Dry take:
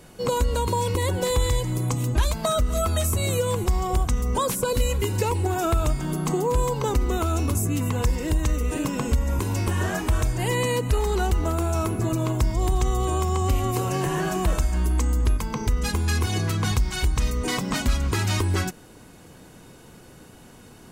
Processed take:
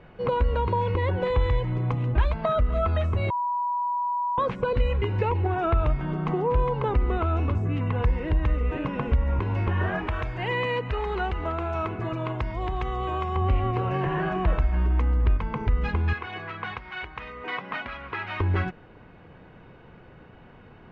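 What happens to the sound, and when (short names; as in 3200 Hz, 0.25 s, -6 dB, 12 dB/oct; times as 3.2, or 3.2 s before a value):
3.3–4.38 bleep 974 Hz -23.5 dBFS
10.07–13.36 tilt +2 dB/oct
16.13–18.4 band-pass 1800 Hz, Q 0.53
whole clip: LPF 2600 Hz 24 dB/oct; bell 270 Hz -5 dB 0.84 oct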